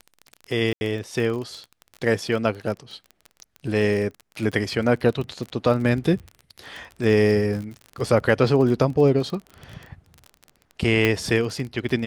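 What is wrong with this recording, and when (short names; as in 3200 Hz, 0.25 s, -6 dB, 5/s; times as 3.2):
crackle 29/s -29 dBFS
0.73–0.81 gap 81 ms
11.05 pop -7 dBFS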